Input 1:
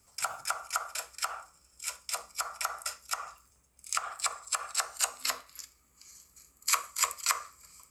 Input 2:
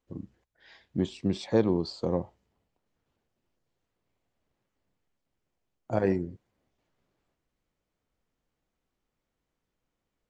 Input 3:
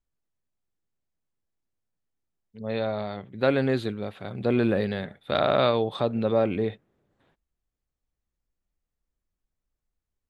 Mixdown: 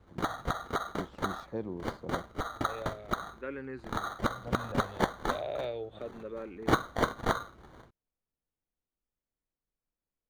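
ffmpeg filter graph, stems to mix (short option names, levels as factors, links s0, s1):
-filter_complex "[0:a]lowshelf=f=380:g=9,acrusher=samples=17:mix=1:aa=0.000001,volume=1.26[s0];[1:a]volume=0.224[s1];[2:a]equalizer=f=210:w=1.5:g=-8.5,asplit=2[s2][s3];[s3]afreqshift=-0.34[s4];[s2][s4]amix=inputs=2:normalize=1,volume=0.282,asplit=2[s5][s6];[s6]apad=whole_len=454077[s7];[s1][s7]sidechaincompress=threshold=0.00158:ratio=8:attack=16:release=197[s8];[s0][s8][s5]amix=inputs=3:normalize=0,lowpass=f=2200:p=1"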